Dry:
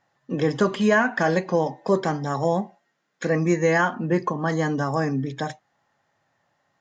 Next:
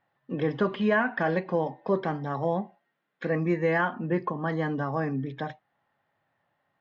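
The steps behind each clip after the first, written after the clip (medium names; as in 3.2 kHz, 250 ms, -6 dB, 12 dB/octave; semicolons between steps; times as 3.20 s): low-pass 3.6 kHz 24 dB/octave; trim -5 dB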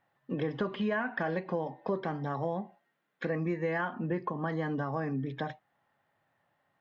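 compression 3:1, threshold -30 dBFS, peak gain reduction 8 dB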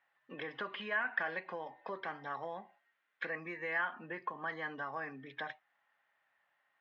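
band-pass filter 2.1 kHz, Q 1.1; trim +2.5 dB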